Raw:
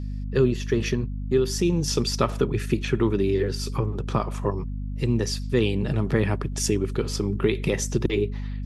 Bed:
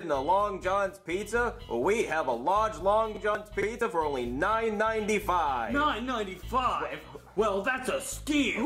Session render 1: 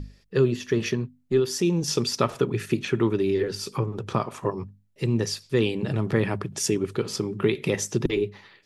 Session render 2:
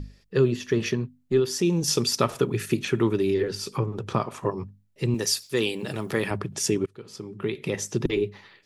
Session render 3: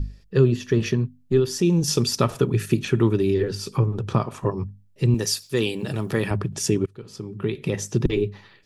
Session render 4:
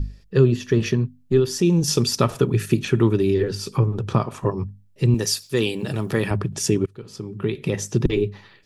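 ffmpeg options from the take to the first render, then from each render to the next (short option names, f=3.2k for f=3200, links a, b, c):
-af "bandreject=f=50:t=h:w=6,bandreject=f=100:t=h:w=6,bandreject=f=150:t=h:w=6,bandreject=f=200:t=h:w=6,bandreject=f=250:t=h:w=6"
-filter_complex "[0:a]asettb=1/sr,asplit=3[a][b][c];[a]atrim=end=1.694[d];[b]atrim=start=1.69:end=3.34,asetpts=PTS-STARTPTS,afade=t=in:d=0.004:c=qsin,afade=t=out:st=1.646:d=0.004:c=qsin,highshelf=f=7.9k:g=10[e];[c]atrim=start=3.336[f];[d][e]acrossfade=d=0.004:c1=hsin:c2=qsin[g];[g][f]acrossfade=d=0.004:c1=qsin:c2=hsin,asettb=1/sr,asplit=3[h][i][j];[h]atrim=end=5.144[k];[i]atrim=start=5.14:end=6.31,asetpts=PTS-STARTPTS,afade=t=in:d=0.004:c=qsin,afade=t=out:st=1.166:d=0.004:c=qsin,aemphasis=mode=production:type=bsi[l];[j]atrim=start=6.306[m];[k][l]acrossfade=d=0.004:c1=hsin:c2=qsin[n];[n][m]acrossfade=d=0.004:c1=qsin:c2=hsin,asplit=2[o][p];[o]atrim=end=6.86,asetpts=PTS-STARTPTS,afade=t=out:st=6.856:d=0.004:c=hsin:silence=0.0668344[q];[p]atrim=start=6.86,asetpts=PTS-STARTPTS,afade=t=in:d=1.32:silence=0.0668344[r];[q][r]concat=n=2:v=0:a=1"
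-af "lowshelf=f=160:g=11.5,bandreject=f=2.1k:w=17"
-af "volume=1.5dB"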